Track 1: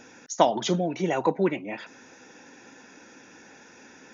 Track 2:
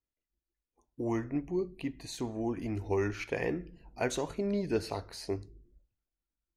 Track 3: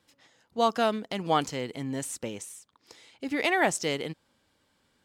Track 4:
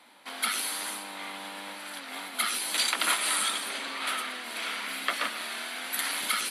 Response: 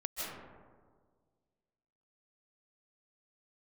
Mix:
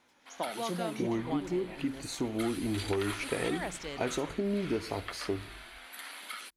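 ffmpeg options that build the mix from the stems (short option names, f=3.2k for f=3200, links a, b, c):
-filter_complex "[0:a]aeval=exprs='val(0)*pow(10,-18*if(lt(mod(-0.93*n/s,1),2*abs(-0.93)/1000),1-mod(-0.93*n/s,1)/(2*abs(-0.93)/1000),(mod(-0.93*n/s,1)-2*abs(-0.93)/1000)/(1-2*abs(-0.93)/1000))/20)':c=same,volume=-5dB[a];[1:a]equalizer=f=280:w=1.5:g=4.5,volume=2dB[b];[2:a]volume=-12dB[c];[3:a]bass=f=250:g=-8,treble=f=4k:g=-5,volume=-12dB[d];[a][b][c]amix=inputs=3:normalize=0,acompressor=threshold=-28dB:ratio=6,volume=0dB[e];[d][e]amix=inputs=2:normalize=0"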